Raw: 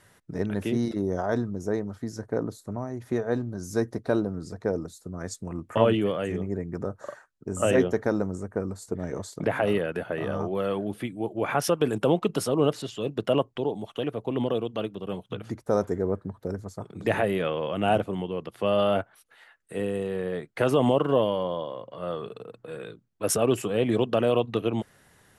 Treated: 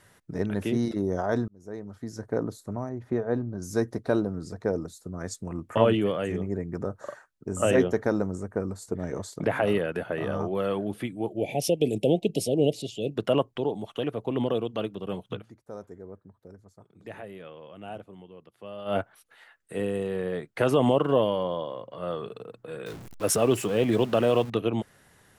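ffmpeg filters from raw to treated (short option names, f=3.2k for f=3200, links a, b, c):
-filter_complex "[0:a]asettb=1/sr,asplit=3[a][b][c];[a]atrim=end=2.894[d];[b]atrim=start=2.89:end=3.62,asetpts=PTS-STARTPTS,afade=t=in:d=0.004:c=qsin,afade=t=out:st=0.726:d=0.004:c=qsin,lowpass=f=1.4k:p=1[e];[c]atrim=start=3.616[f];[d][e]acrossfade=d=0.004:c1=hsin:c2=qsin[g];[g][f]acrossfade=d=0.004:c1=qsin:c2=hsin,asettb=1/sr,asplit=3[h][i][j];[h]atrim=end=11.304[k];[i]atrim=start=11.3:end=13.15,asetpts=PTS-STARTPTS,afade=t=in:d=0.004:c=qsin,afade=t=out:st=1.846:d=0.004:c=qsin,asuperstop=centerf=1300:order=8:qfactor=0.78[l];[j]atrim=start=13.146[m];[k][l]acrossfade=d=0.004:c1=hsin:c2=qsin[n];[n][m]acrossfade=d=0.004:c1=qsin:c2=hsin,asettb=1/sr,asplit=3[o][p][q];[o]atrim=end=22.864[r];[p]atrim=start=22.86:end=24.5,asetpts=PTS-STARTPTS,afade=t=in:d=0.004:c=qsin,afade=t=out:st=1.636:d=0.004:c=qsin,aeval=exprs='val(0)+0.5*0.0133*sgn(val(0))':c=same[s];[q]atrim=start=24.496[t];[r][s]acrossfade=d=0.004:c1=hsin:c2=qsin[u];[u][t]acrossfade=d=0.004:c1=qsin:c2=hsin,asplit=4[v][w][x][y];[v]atrim=end=1.48,asetpts=PTS-STARTPTS,afade=t=out:st=1.476:d=0.004:c=hsin[z];[w]atrim=start=1.48:end=15.46,asetpts=PTS-STARTPTS,afade=t=in:d=0.84,afade=t=out:st=13.86:d=0.12:silence=0.149624[aa];[x]atrim=start=15.46:end=18.85,asetpts=PTS-STARTPTS,volume=-16.5dB[ab];[y]atrim=start=18.85,asetpts=PTS-STARTPTS,afade=t=in:d=0.12:silence=0.149624[ac];[z][aa][ab][ac]concat=n=4:v=0:a=1"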